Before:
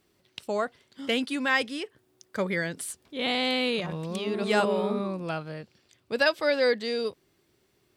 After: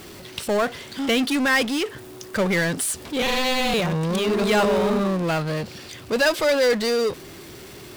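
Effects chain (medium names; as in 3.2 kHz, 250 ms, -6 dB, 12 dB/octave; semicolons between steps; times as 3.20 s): 3.22–3.74 s: ring modulator 260 Hz; power-law waveshaper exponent 0.5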